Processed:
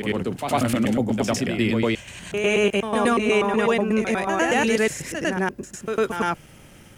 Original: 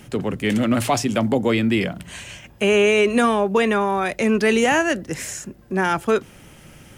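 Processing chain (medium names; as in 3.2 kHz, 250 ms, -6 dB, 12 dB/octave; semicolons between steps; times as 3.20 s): slices played last to first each 122 ms, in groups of 4; reverse echo 102 ms -6 dB; trim -3 dB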